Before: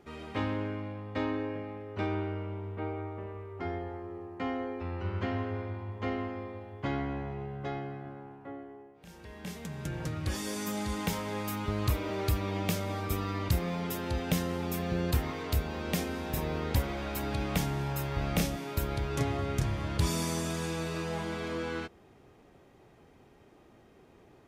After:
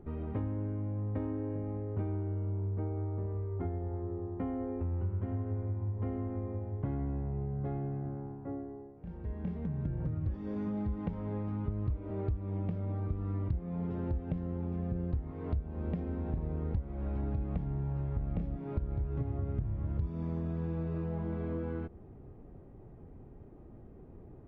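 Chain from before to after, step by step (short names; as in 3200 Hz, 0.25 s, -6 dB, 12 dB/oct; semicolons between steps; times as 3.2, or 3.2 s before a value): tilt -3.5 dB/oct; compressor 6:1, threshold -31 dBFS, peak gain reduction 19.5 dB; tape spacing loss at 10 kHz 44 dB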